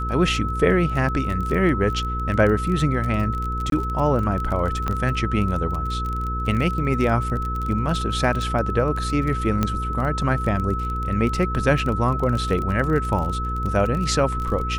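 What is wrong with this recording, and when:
surface crackle 24 per second −26 dBFS
mains hum 60 Hz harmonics 8 −27 dBFS
whistle 1,300 Hz −27 dBFS
0:03.70–0:03.72: drop-out 22 ms
0:04.88: click −12 dBFS
0:09.63: click −8 dBFS

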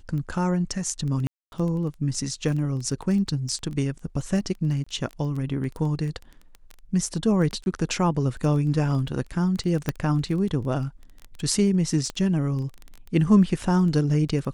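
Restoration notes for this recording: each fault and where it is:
surface crackle 11 per second −30 dBFS
0:01.27–0:01.52: drop-out 251 ms
0:04.84–0:04.87: drop-out 25 ms
0:07.64–0:07.66: drop-out 21 ms
0:09.89: click −10 dBFS
0:12.10: click −18 dBFS

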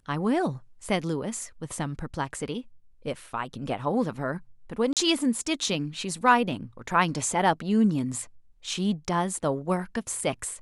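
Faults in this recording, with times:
0:04.93–0:04.97: drop-out 37 ms

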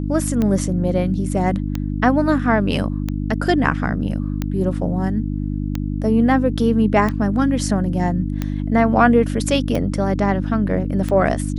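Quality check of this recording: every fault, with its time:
mains hum 50 Hz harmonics 6 −23 dBFS
scratch tick 45 rpm −10 dBFS

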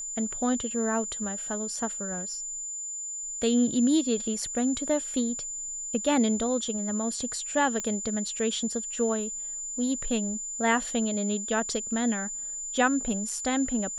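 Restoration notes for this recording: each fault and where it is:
whistle 7,100 Hz −33 dBFS
0:07.80: click −18 dBFS

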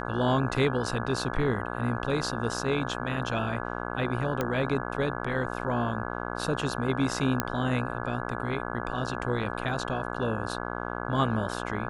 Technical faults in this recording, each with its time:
mains buzz 60 Hz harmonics 28 −34 dBFS
0:04.41: click −14 dBFS
0:07.40: click −9 dBFS

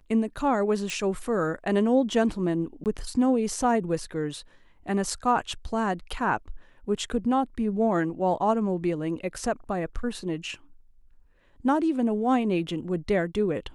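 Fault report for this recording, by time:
0:00.90: click
0:02.84–0:02.86: drop-out 18 ms

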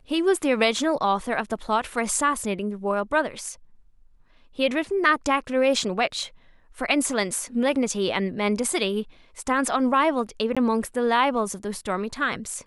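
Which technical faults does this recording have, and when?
0:10.55–0:10.57: drop-out 16 ms

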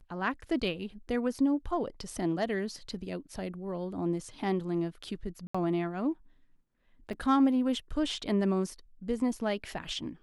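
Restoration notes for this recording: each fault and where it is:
0:05.47–0:05.54: drop-out 75 ms
0:07.13: drop-out 3.7 ms

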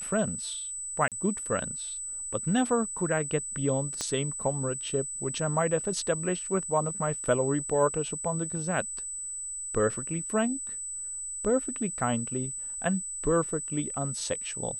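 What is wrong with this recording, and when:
whistle 8,000 Hz −34 dBFS
0:01.08–0:01.12: drop-out 37 ms
0:04.01: click −17 dBFS

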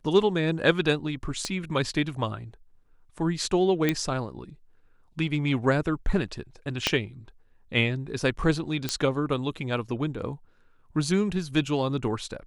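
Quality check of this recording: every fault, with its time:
0:01.45: click −16 dBFS
0:03.89: click −10 dBFS
0:06.87: click −7 dBFS
0:08.89: click −10 dBFS

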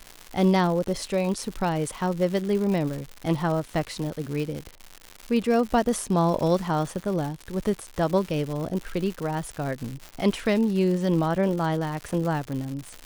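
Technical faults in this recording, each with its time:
surface crackle 200 per second −30 dBFS

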